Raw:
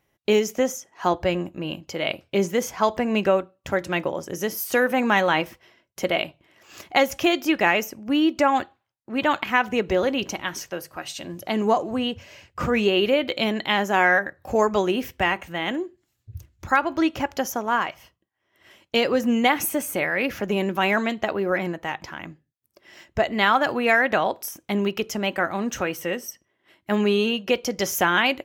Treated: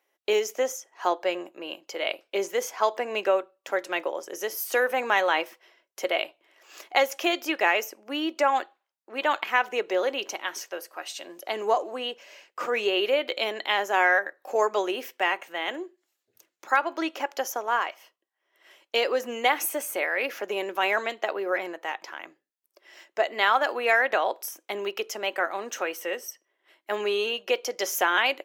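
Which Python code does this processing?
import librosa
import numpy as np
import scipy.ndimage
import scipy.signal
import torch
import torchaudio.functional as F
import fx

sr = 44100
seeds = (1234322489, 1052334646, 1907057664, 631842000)

y = scipy.signal.sosfilt(scipy.signal.butter(4, 380.0, 'highpass', fs=sr, output='sos'), x)
y = y * librosa.db_to_amplitude(-2.5)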